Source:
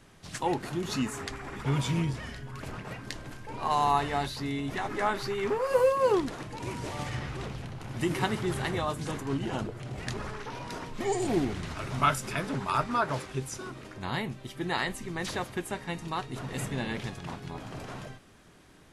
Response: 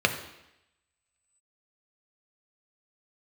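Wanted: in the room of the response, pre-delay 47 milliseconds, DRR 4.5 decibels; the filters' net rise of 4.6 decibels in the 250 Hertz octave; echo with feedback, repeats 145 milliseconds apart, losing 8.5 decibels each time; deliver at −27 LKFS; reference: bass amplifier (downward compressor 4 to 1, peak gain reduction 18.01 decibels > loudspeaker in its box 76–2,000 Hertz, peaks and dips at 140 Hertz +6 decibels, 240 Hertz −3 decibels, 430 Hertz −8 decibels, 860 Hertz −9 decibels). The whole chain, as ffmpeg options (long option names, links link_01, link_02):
-filter_complex "[0:a]equalizer=frequency=250:width_type=o:gain=8,aecho=1:1:145|290|435|580:0.376|0.143|0.0543|0.0206,asplit=2[link_01][link_02];[1:a]atrim=start_sample=2205,adelay=47[link_03];[link_02][link_03]afir=irnorm=-1:irlink=0,volume=-19dB[link_04];[link_01][link_04]amix=inputs=2:normalize=0,acompressor=threshold=-38dB:ratio=4,highpass=frequency=76:width=0.5412,highpass=frequency=76:width=1.3066,equalizer=frequency=140:width_type=q:width=4:gain=6,equalizer=frequency=240:width_type=q:width=4:gain=-3,equalizer=frequency=430:width_type=q:width=4:gain=-8,equalizer=frequency=860:width_type=q:width=4:gain=-9,lowpass=frequency=2000:width=0.5412,lowpass=frequency=2000:width=1.3066,volume=13.5dB"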